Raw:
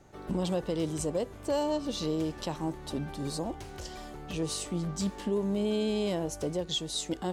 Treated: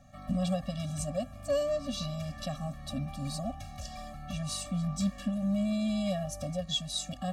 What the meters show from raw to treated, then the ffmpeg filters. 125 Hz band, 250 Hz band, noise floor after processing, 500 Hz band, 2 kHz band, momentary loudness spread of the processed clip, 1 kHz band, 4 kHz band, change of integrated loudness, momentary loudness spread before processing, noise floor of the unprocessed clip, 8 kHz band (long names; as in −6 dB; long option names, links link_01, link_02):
+2.0 dB, −0.5 dB, −46 dBFS, −3.5 dB, −2.0 dB, 8 LU, −2.5 dB, −0.5 dB, −1.0 dB, 7 LU, −46 dBFS, −1.5 dB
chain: -af "afftfilt=real='re*eq(mod(floor(b*sr/1024/270),2),0)':imag='im*eq(mod(floor(b*sr/1024/270),2),0)':win_size=1024:overlap=0.75,volume=2dB"